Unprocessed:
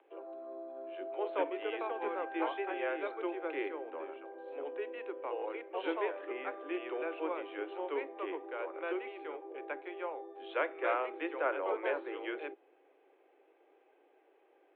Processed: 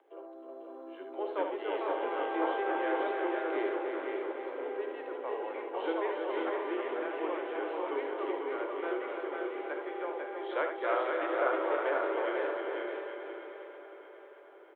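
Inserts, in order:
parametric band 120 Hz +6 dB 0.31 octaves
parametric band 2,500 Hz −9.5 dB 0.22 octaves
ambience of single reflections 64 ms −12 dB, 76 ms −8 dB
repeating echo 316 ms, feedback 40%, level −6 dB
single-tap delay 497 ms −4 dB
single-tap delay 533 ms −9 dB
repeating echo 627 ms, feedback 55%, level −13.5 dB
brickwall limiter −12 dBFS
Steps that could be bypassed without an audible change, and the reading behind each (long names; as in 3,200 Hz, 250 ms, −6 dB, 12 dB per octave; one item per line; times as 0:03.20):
parametric band 120 Hz: nothing at its input below 240 Hz
brickwall limiter −12 dBFS: peak of its input −16.0 dBFS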